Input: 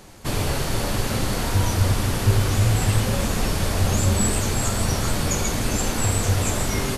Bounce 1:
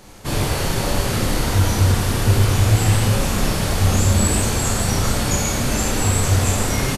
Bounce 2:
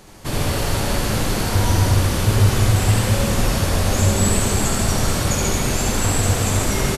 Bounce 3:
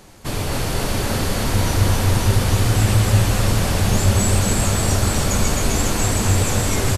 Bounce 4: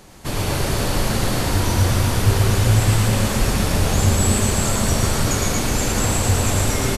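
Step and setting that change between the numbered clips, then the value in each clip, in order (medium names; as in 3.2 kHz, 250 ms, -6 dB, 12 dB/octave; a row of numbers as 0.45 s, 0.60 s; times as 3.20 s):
reverse bouncing-ball echo, first gap: 30 ms, 70 ms, 260 ms, 110 ms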